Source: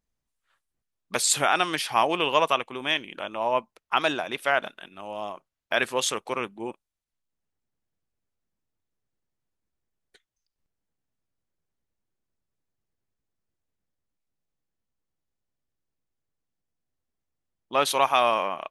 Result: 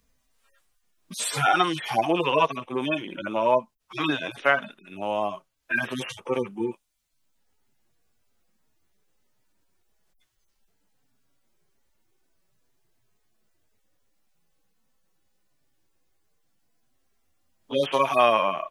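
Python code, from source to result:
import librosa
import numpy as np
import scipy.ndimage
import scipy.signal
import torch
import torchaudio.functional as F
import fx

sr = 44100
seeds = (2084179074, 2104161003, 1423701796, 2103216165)

y = fx.hpss_only(x, sr, part='harmonic')
y = fx.band_squash(y, sr, depth_pct=40)
y = F.gain(torch.from_numpy(y), 6.5).numpy()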